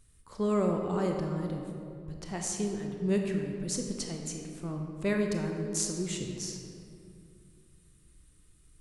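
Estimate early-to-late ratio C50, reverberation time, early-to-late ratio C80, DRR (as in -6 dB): 3.0 dB, 2.5 s, 4.5 dB, 2.0 dB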